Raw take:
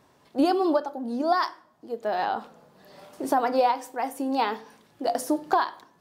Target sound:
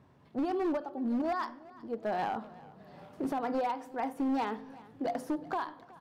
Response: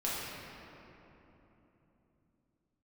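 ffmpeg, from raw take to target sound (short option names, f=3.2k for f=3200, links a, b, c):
-filter_complex "[0:a]highpass=60,bass=f=250:g=12,treble=f=4k:g=-12,alimiter=limit=-16.5dB:level=0:latency=1:release=327,volume=21.5dB,asoftclip=hard,volume=-21.5dB,asplit=2[a][b];[b]aecho=0:1:371|742|1113|1484:0.0891|0.0472|0.025|0.0133[c];[a][c]amix=inputs=2:normalize=0,volume=-5.5dB"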